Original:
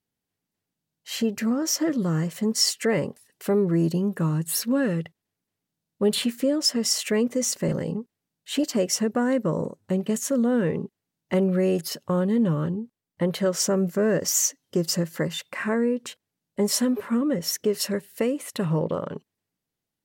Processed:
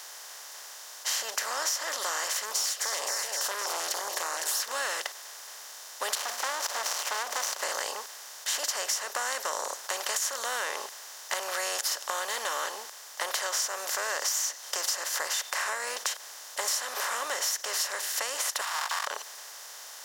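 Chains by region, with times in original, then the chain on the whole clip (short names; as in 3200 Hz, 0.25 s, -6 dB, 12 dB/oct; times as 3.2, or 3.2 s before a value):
2.37–4.6 echo with dull and thin repeats by turns 0.129 s, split 1000 Hz, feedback 67%, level -12 dB + tube stage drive 22 dB, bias 0.4 + stepped notch 7 Hz 770–3300 Hz
6.15–7.62 median filter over 25 samples + notches 60/120/180/240 Hz + core saturation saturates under 850 Hz
18.61–19.07 minimum comb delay 4.3 ms + steep high-pass 920 Hz 48 dB/oct + notch 6100 Hz, Q 6.3
whole clip: per-bin compression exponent 0.4; HPF 800 Hz 24 dB/oct; compressor 6:1, threshold -27 dBFS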